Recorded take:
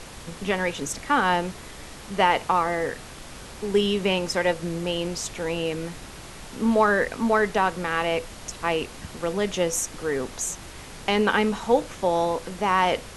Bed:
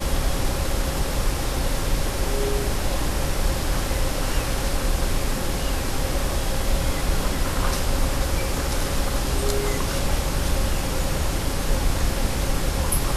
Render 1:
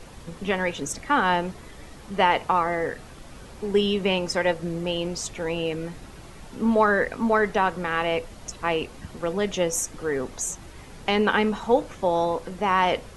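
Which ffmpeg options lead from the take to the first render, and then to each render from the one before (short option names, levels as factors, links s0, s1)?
-af "afftdn=nr=8:nf=-41"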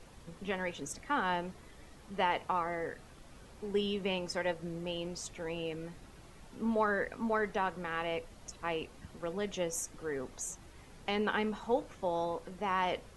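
-af "volume=0.282"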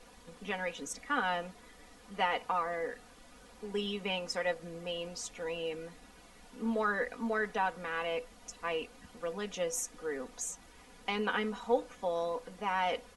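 -af "lowshelf=f=270:g=-8.5,aecho=1:1:4.1:0.7"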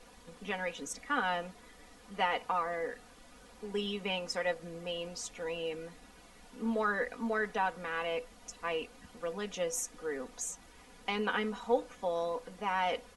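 -af anull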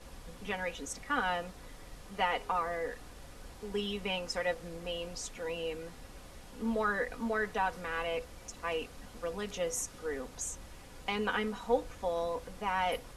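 -filter_complex "[1:a]volume=0.0398[s0];[0:a][s0]amix=inputs=2:normalize=0"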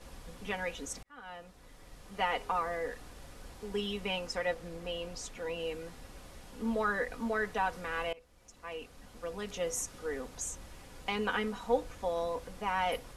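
-filter_complex "[0:a]asettb=1/sr,asplit=3[s0][s1][s2];[s0]atrim=end=4.274[s3];[s1]atrim=start=4.27:end=5.6,asetpts=PTS-STARTPTS,afade=t=in:d=0.004:c=qsin,afade=t=out:st=1.326:d=0.004:c=qsin,equalizer=f=11000:w=0.38:g=-3[s4];[s2]atrim=start=5.596[s5];[s3][s4]acrossfade=d=0.004:c1=hsin:c2=qsin[s6];[s6][s5]acrossfade=d=0.004:c1=qsin:c2=hsin,asplit=3[s7][s8][s9];[s7]atrim=end=1.03,asetpts=PTS-STARTPTS,afade=t=out:st=1.026:d=0.004:c=hsin[s10];[s8]atrim=start=1.03:end=8.13,asetpts=PTS-STARTPTS,afade=t=in:d=1.33,afade=t=out:st=7.096:d=0.004:c=hsin:silence=0.0841395[s11];[s9]atrim=start=8.13,asetpts=PTS-STARTPTS,afade=t=in:d=1.57:silence=0.0841395[s12];[s10][s11][s12]concat=n=3:v=0:a=1"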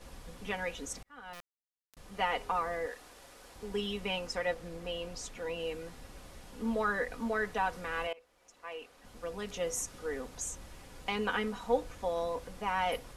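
-filter_complex "[0:a]asettb=1/sr,asplit=3[s0][s1][s2];[s0]atrim=end=1.334[s3];[s1]atrim=start=1.33:end=1.97,asetpts=PTS-STARTPTS,afade=t=in:d=0.004:c=qsin,afade=t=out:st=0.636:d=0.004:c=qsin,acrusher=bits=4:dc=4:mix=0:aa=0.000001[s4];[s2]atrim=start=1.966[s5];[s3][s4]acrossfade=d=0.004:c1=hsin:c2=qsin[s6];[s6][s5]acrossfade=d=0.004:c1=qsin:c2=hsin,asettb=1/sr,asplit=3[s7][s8][s9];[s7]atrim=end=2.864[s10];[s8]atrim=start=2.86:end=3.56,asetpts=PTS-STARTPTS,afade=t=in:d=0.004:c=qsin,afade=t=out:st=0.696:d=0.004:c=qsin,bass=f=250:g=-14,treble=f=4000:g=1[s11];[s9]atrim=start=3.556[s12];[s10][s11]acrossfade=d=0.004:c1=hsin:c2=qsin[s13];[s13][s12]acrossfade=d=0.004:c1=qsin:c2=hsin,asettb=1/sr,asplit=3[s14][s15][s16];[s14]atrim=end=8.074[s17];[s15]atrim=start=8.07:end=9.05,asetpts=PTS-STARTPTS,afade=t=in:d=0.004:c=qsin,afade=t=out:st=0.976:d=0.004:c=qsin,bass=f=250:g=-15,treble=f=4000:g=-4[s18];[s16]atrim=start=9.046[s19];[s17][s18]acrossfade=d=0.004:c1=hsin:c2=qsin[s20];[s20][s19]acrossfade=d=0.004:c1=qsin:c2=hsin"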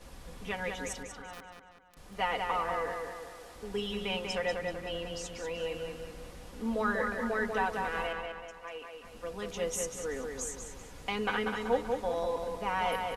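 -filter_complex "[0:a]asplit=2[s0][s1];[s1]adelay=191,lowpass=f=5000:p=1,volume=0.631,asplit=2[s2][s3];[s3]adelay=191,lowpass=f=5000:p=1,volume=0.5,asplit=2[s4][s5];[s5]adelay=191,lowpass=f=5000:p=1,volume=0.5,asplit=2[s6][s7];[s7]adelay=191,lowpass=f=5000:p=1,volume=0.5,asplit=2[s8][s9];[s9]adelay=191,lowpass=f=5000:p=1,volume=0.5,asplit=2[s10][s11];[s11]adelay=191,lowpass=f=5000:p=1,volume=0.5[s12];[s0][s2][s4][s6][s8][s10][s12]amix=inputs=7:normalize=0"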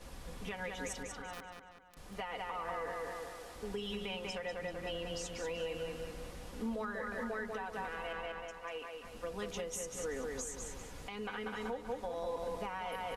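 -af "acompressor=threshold=0.0178:ratio=4,alimiter=level_in=1.88:limit=0.0631:level=0:latency=1:release=248,volume=0.531"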